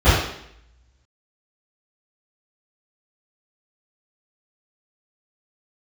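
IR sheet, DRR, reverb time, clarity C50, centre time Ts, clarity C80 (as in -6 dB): -19.0 dB, 0.70 s, -0.5 dB, 66 ms, 3.5 dB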